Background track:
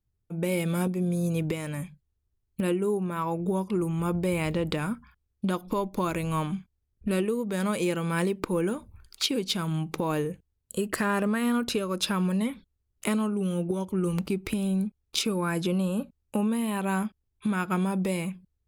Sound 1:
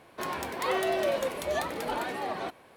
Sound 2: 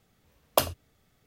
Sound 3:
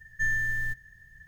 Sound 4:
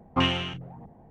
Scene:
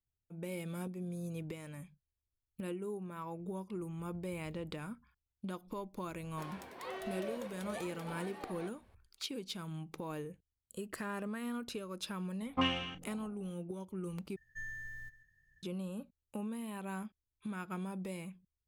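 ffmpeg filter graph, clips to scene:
-filter_complex "[0:a]volume=-14dB[a];[4:a]aecho=1:1:3.9:0.69[b];[3:a]aecho=1:1:136:0.141[c];[a]asplit=2[d][e];[d]atrim=end=14.364[f];[c]atrim=end=1.27,asetpts=PTS-STARTPTS,volume=-17dB[g];[e]atrim=start=15.626[h];[1:a]atrim=end=2.76,asetpts=PTS-STARTPTS,volume=-15dB,afade=t=in:d=0.004:c=hsin,afade=t=out:st=2.756:d=0.004:c=hsin,adelay=6190[i];[b]atrim=end=1.1,asetpts=PTS-STARTPTS,volume=-10.5dB,afade=t=in:d=0.004:c=hsin,afade=t=out:st=1.096:d=0.004:c=hsin,adelay=12410[j];[f][g]acrossfade=d=0.004:c1=hsin:c2=hsin[k];[k][h]acrossfade=d=0.004:c1=hsin:c2=hsin[l];[l][i][j]amix=inputs=3:normalize=0"

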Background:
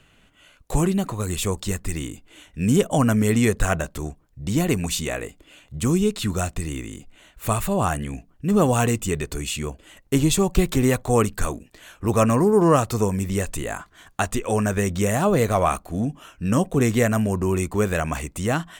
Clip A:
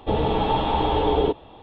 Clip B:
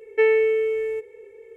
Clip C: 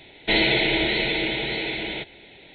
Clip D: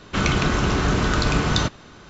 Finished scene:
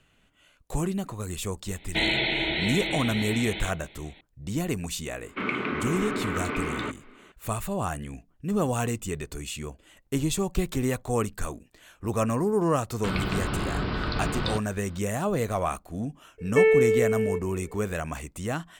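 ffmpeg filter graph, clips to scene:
-filter_complex "[4:a]asplit=2[a][b];[0:a]volume=-7.5dB[c];[3:a]equalizer=f=450:t=o:w=0.54:g=-6.5[d];[a]highpass=f=140:w=0.5412,highpass=f=140:w=1.3066,equalizer=f=150:t=q:w=4:g=-9,equalizer=f=260:t=q:w=4:g=8,equalizer=f=410:t=q:w=4:g=7,equalizer=f=710:t=q:w=4:g=-4,equalizer=f=1.2k:t=q:w=4:g=5,equalizer=f=2.2k:t=q:w=4:g=10,lowpass=f=3.1k:w=0.5412,lowpass=f=3.1k:w=1.3066[e];[b]aresample=11025,aresample=44100[f];[d]atrim=end=2.54,asetpts=PTS-STARTPTS,volume=-4.5dB,afade=t=in:d=0.004:c=hsin,afade=t=out:st=2.536:d=0.004:c=hsin,adelay=1670[g];[e]atrim=end=2.09,asetpts=PTS-STARTPTS,volume=-10.5dB,afade=t=in:d=0.004:c=hsin,afade=t=out:st=2.086:d=0.004:c=hsin,adelay=5230[h];[f]atrim=end=2.09,asetpts=PTS-STARTPTS,volume=-8.5dB,afade=t=in:d=0.004:c=hsin,afade=t=out:st=2.086:d=0.004:c=hsin,adelay=12900[i];[2:a]atrim=end=1.56,asetpts=PTS-STARTPTS,volume=-1dB,afade=t=in:d=0.004:c=hsin,afade=t=out:st=1.556:d=0.004:c=hsin,adelay=16380[j];[c][g][h][i][j]amix=inputs=5:normalize=0"

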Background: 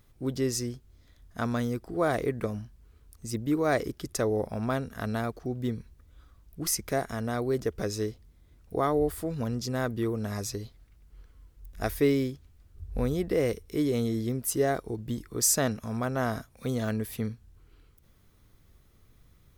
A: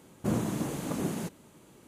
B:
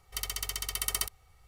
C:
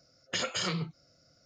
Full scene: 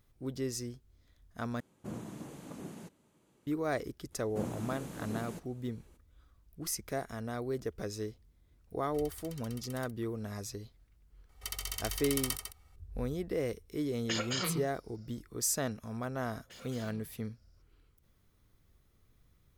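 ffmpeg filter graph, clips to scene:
-filter_complex "[1:a]asplit=2[a][b];[2:a]asplit=2[c][d];[3:a]asplit=2[e][f];[0:a]volume=-7.5dB[g];[a]highshelf=f=11k:g=-4.5[h];[c]acompressor=threshold=-43dB:ratio=3:attack=2.5:release=594:knee=1:detection=peak[i];[d]aecho=1:1:151:0.398[j];[f]asoftclip=type=tanh:threshold=-37.5dB[k];[g]asplit=2[l][m];[l]atrim=end=1.604[n];[h]atrim=end=1.87,asetpts=PTS-STARTPTS,volume=-13dB[o];[m]atrim=start=3.466[p];[b]atrim=end=1.87,asetpts=PTS-STARTPTS,volume=-9.5dB,afade=t=in:d=0.02,afade=t=out:st=1.85:d=0.02,adelay=4110[q];[i]atrim=end=1.47,asetpts=PTS-STARTPTS,volume=-5.5dB,afade=t=in:d=0.004:c=hsin,afade=t=out:st=1.466:d=0.004:c=hsin,adelay=388962S[r];[j]atrim=end=1.47,asetpts=PTS-STARTPTS,volume=-4.5dB,afade=t=in:d=0.004:c=hsin,afade=t=out:st=1.466:d=0.004:c=hsin,adelay=11290[s];[e]atrim=end=1.45,asetpts=PTS-STARTPTS,volume=-3dB,afade=t=in:d=0.004:c=hsin,afade=t=out:st=1.446:d=0.004:c=hsin,adelay=13760[t];[k]atrim=end=1.45,asetpts=PTS-STARTPTS,volume=-13dB,afade=t=in:d=0.004:c=hsin,afade=t=out:st=1.446:d=0.004:c=hsin,adelay=16170[u];[n][o]acrossfade=d=0.004:c1=hsin:c2=hsin[v];[v][p]acrossfade=d=0.004:c1=hsin:c2=hsin[w];[w][q][r][s][t][u]amix=inputs=6:normalize=0"

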